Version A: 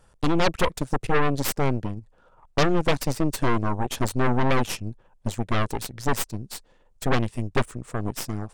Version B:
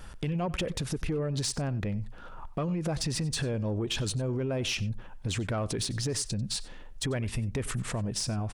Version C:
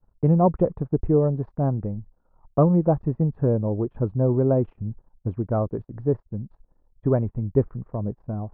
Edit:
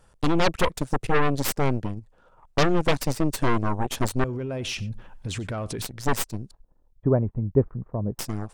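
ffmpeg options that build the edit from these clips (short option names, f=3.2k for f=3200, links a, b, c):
-filter_complex "[0:a]asplit=3[a][b][c];[a]atrim=end=4.242[d];[1:a]atrim=start=4.238:end=5.822[e];[b]atrim=start=5.818:end=6.512[f];[2:a]atrim=start=6.508:end=8.192[g];[c]atrim=start=8.188[h];[d][e]acrossfade=d=0.004:c1=hsin:c2=hsin[i];[i][f]acrossfade=d=0.004:c1=hsin:c2=hsin[j];[j][g]acrossfade=d=0.004:c1=hsin:c2=hsin[k];[k][h]acrossfade=d=0.004:c1=hsin:c2=hsin"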